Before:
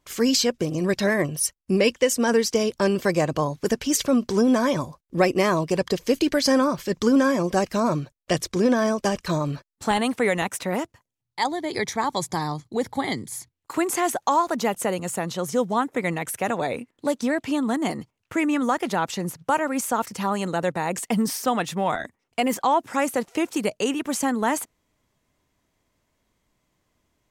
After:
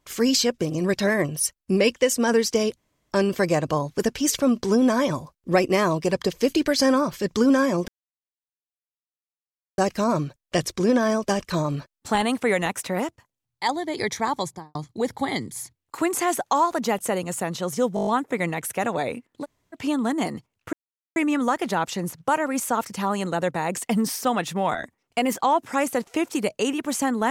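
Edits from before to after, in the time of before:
0:02.77: splice in room tone 0.34 s
0:07.54: splice in silence 1.90 s
0:12.10–0:12.51: fade out and dull
0:15.71: stutter 0.02 s, 7 plays
0:17.07–0:17.39: fill with room tone, crossfade 0.06 s
0:18.37: splice in silence 0.43 s

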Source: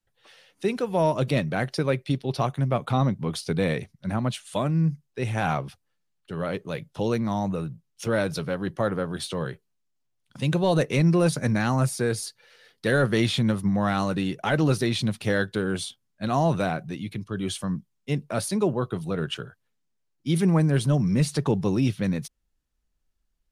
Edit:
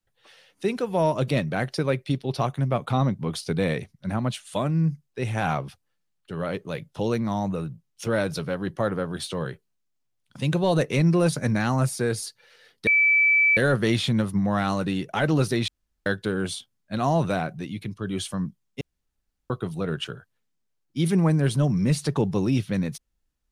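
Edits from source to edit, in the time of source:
0:12.87: insert tone 2,310 Hz −15.5 dBFS 0.70 s
0:14.98–0:15.36: fill with room tone
0:18.11–0:18.80: fill with room tone

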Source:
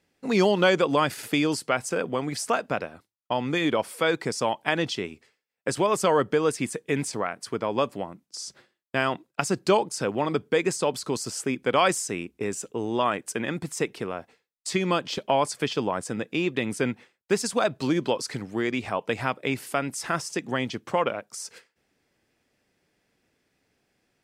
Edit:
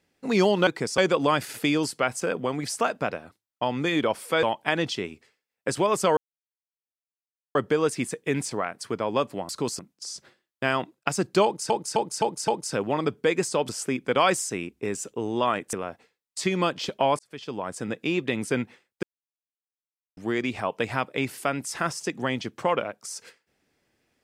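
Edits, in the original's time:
0:04.12–0:04.43: move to 0:00.67
0:06.17: splice in silence 1.38 s
0:09.76–0:10.02: repeat, 5 plays
0:10.97–0:11.27: move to 0:08.11
0:13.31–0:14.02: remove
0:15.48–0:16.22: fade in
0:17.32–0:18.46: silence

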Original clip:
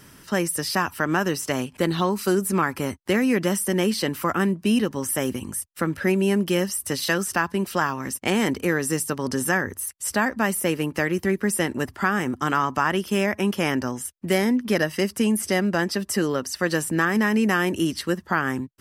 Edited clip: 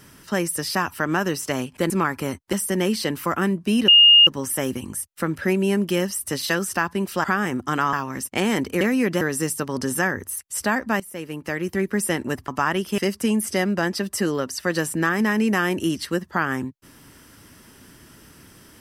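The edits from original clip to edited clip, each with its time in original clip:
0:01.90–0:02.48: remove
0:03.11–0:03.51: move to 0:08.71
0:04.86: insert tone 2,840 Hz −8 dBFS 0.39 s
0:10.50–0:11.39: fade in, from −17 dB
0:11.98–0:12.67: move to 0:07.83
0:13.17–0:14.94: remove

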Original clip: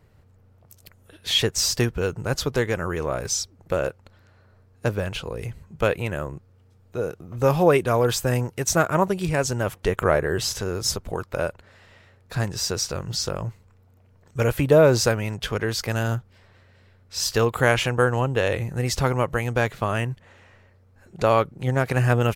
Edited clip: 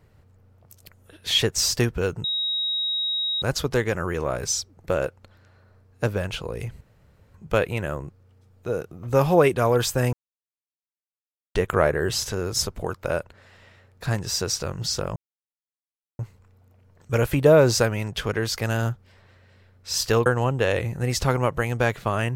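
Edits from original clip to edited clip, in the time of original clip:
0:02.24: insert tone 3,800 Hz −22.5 dBFS 1.18 s
0:05.63: splice in room tone 0.53 s
0:08.42–0:09.84: silence
0:13.45: splice in silence 1.03 s
0:17.52–0:18.02: remove

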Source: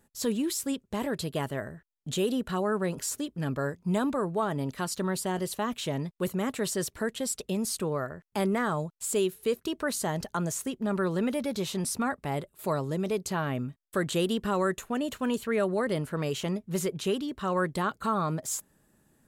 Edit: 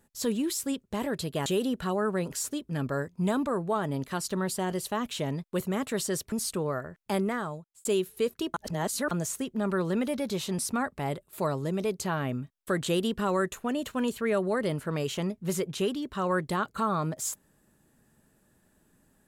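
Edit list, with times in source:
0:01.46–0:02.13: remove
0:06.99–0:07.58: remove
0:08.40–0:09.11: fade out
0:09.80–0:10.37: reverse

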